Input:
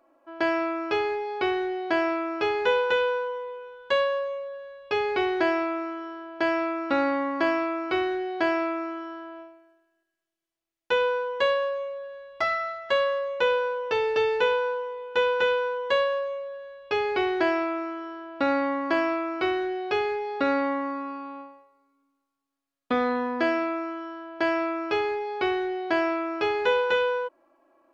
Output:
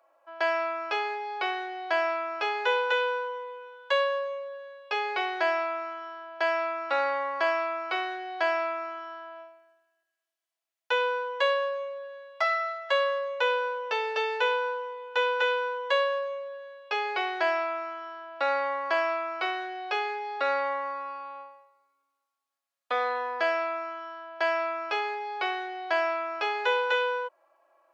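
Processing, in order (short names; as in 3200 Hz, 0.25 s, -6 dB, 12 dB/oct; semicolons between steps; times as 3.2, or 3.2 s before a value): HPF 540 Hz 24 dB/oct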